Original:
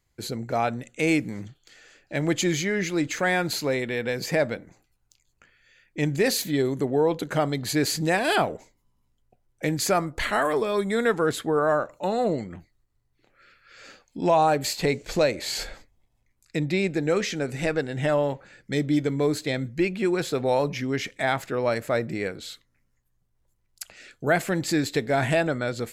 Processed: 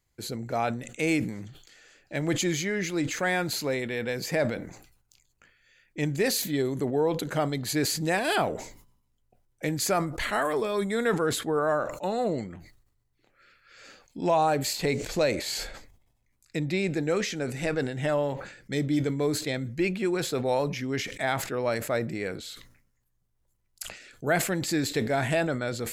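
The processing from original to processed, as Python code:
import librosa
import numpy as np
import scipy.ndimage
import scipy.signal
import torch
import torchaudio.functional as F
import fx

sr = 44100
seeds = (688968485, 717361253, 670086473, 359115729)

y = fx.high_shelf(x, sr, hz=7000.0, db=4.0)
y = fx.sustainer(y, sr, db_per_s=79.0)
y = F.gain(torch.from_numpy(y), -3.5).numpy()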